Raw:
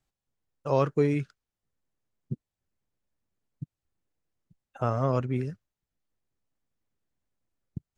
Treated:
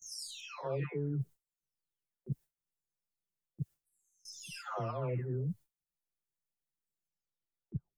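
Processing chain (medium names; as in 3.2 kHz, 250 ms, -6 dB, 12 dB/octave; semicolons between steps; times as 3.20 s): delay that grows with frequency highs early, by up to 900 ms; gate with hold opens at -56 dBFS; treble shelf 5.3 kHz +11.5 dB; reverse; compression 12:1, threshold -41 dBFS, peak gain reduction 20.5 dB; reverse; trim +8 dB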